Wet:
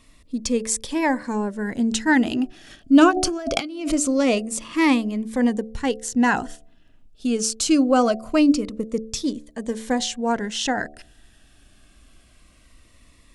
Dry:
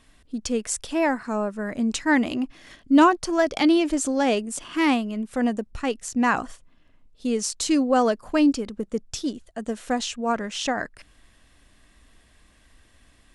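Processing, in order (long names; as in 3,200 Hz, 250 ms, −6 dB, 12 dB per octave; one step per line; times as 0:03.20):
hum removal 73.98 Hz, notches 10
0:03.11–0:03.92: compressor whose output falls as the input rises −30 dBFS, ratio −1
phaser whose notches keep moving one way falling 0.23 Hz
level +4 dB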